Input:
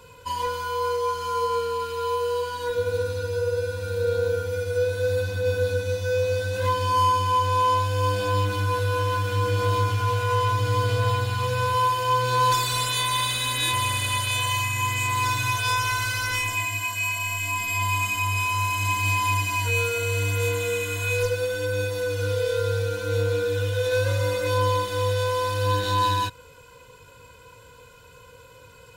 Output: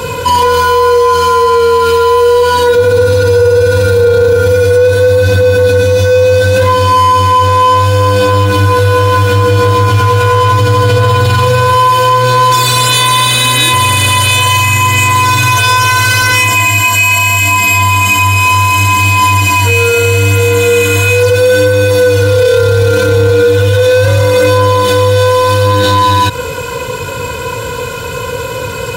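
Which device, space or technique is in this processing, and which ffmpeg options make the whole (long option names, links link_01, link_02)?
mastering chain: -af "highpass=56,equalizer=frequency=290:width_type=o:width=2.6:gain=3.5,acompressor=threshold=-26dB:ratio=2,asoftclip=type=tanh:threshold=-18.5dB,alimiter=level_in=30dB:limit=-1dB:release=50:level=0:latency=1,volume=-1dB"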